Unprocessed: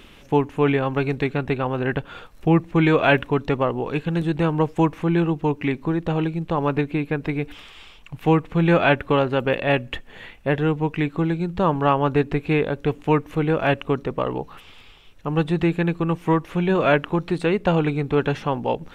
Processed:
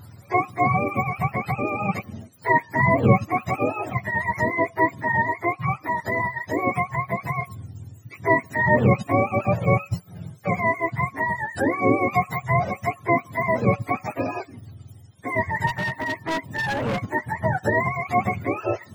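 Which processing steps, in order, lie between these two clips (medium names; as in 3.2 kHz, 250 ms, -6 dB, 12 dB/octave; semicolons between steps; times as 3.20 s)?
spectrum inverted on a logarithmic axis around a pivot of 560 Hz; 15.67–17.11 s: overload inside the chain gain 22.5 dB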